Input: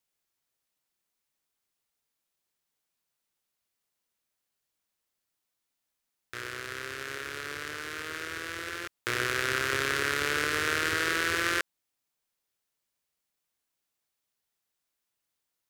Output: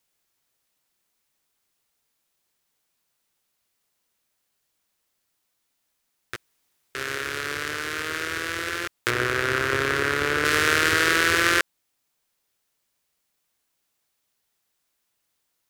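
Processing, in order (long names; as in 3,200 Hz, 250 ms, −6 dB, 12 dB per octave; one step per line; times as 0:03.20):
0:06.36–0:06.95: fill with room tone
0:09.10–0:10.45: high-shelf EQ 2,200 Hz −9 dB
level +8 dB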